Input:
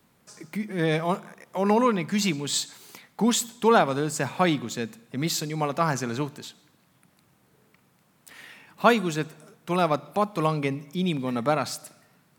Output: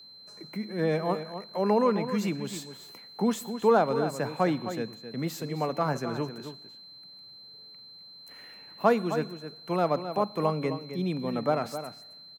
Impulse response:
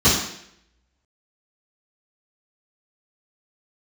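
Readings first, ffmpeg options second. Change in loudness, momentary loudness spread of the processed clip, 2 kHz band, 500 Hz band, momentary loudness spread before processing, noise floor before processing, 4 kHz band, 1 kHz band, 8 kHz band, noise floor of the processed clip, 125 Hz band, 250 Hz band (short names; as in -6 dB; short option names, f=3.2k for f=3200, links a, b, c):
-3.0 dB, 22 LU, -7.5 dB, -1.0 dB, 15 LU, -64 dBFS, -7.0 dB, -4.0 dB, -13.5 dB, -50 dBFS, -4.0 dB, -3.5 dB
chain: -filter_complex "[0:a]equalizer=f=500:t=o:w=1:g=4,equalizer=f=4k:t=o:w=1:g=-10,equalizer=f=8k:t=o:w=1:g=-6,aeval=exprs='val(0)+0.00708*sin(2*PI*4100*n/s)':c=same,acrossover=split=170|1300[a][b][c];[c]asoftclip=type=tanh:threshold=-27.5dB[d];[a][b][d]amix=inputs=3:normalize=0,asplit=2[e][f];[f]adelay=262.4,volume=-10dB,highshelf=f=4k:g=-5.9[g];[e][g]amix=inputs=2:normalize=0,volume=-4.5dB"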